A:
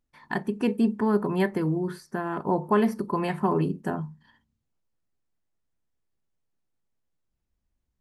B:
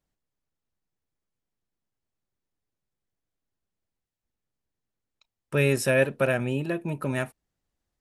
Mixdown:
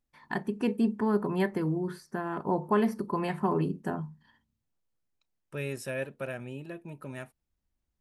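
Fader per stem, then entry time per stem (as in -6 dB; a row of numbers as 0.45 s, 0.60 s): -3.5 dB, -12.5 dB; 0.00 s, 0.00 s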